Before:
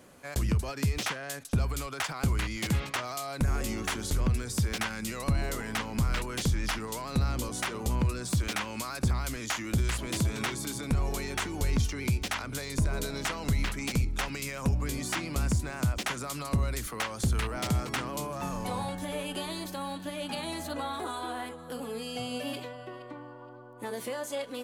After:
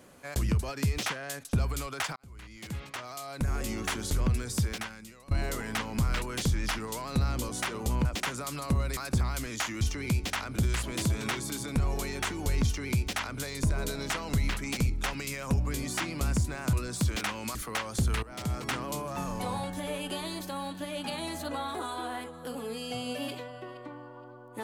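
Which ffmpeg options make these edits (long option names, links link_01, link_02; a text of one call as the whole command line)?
ffmpeg -i in.wav -filter_complex "[0:a]asplit=10[link_01][link_02][link_03][link_04][link_05][link_06][link_07][link_08][link_09][link_10];[link_01]atrim=end=2.16,asetpts=PTS-STARTPTS,afade=type=out:start_time=2.156:duration=0.004:curve=hsin[link_11];[link_02]atrim=start=2.16:end=5.31,asetpts=PTS-STARTPTS,afade=type=in:duration=1.72,afade=type=out:start_time=2.45:duration=0.7:curve=qua:silence=0.112202[link_12];[link_03]atrim=start=5.31:end=8.052,asetpts=PTS-STARTPTS,afade=type=in:duration=0.004:curve=hsin:silence=0.112202[link_13];[link_04]atrim=start=15.878:end=16.802[link_14];[link_05]atrim=start=8.868:end=9.712[link_15];[link_06]atrim=start=11.788:end=12.542[link_16];[link_07]atrim=start=9.708:end=15.882[link_17];[link_08]atrim=start=8.048:end=8.872[link_18];[link_09]atrim=start=16.798:end=17.48,asetpts=PTS-STARTPTS,afade=type=out:start_time=0.678:duration=0.004:curve=hsin:silence=0.188365[link_19];[link_10]atrim=start=17.48,asetpts=PTS-STARTPTS,afade=type=in:duration=0.48:silence=0.188365[link_20];[link_11][link_12][link_13]concat=n=3:v=0:a=1[link_21];[link_21][link_14]acrossfade=duration=0.004:curve1=hsin:curve2=hsin[link_22];[link_22][link_15]acrossfade=duration=0.004:curve1=hsin:curve2=hsin[link_23];[link_23][link_16]acrossfade=duration=0.004:curve1=hsin:curve2=hsin[link_24];[link_24][link_17]acrossfade=duration=0.004:curve1=hsin:curve2=hsin[link_25];[link_25][link_18]acrossfade=duration=0.004:curve1=hsin:curve2=hsin[link_26];[link_19][link_20]concat=n=2:v=0:a=1[link_27];[link_26][link_27]acrossfade=duration=0.004:curve1=hsin:curve2=hsin" out.wav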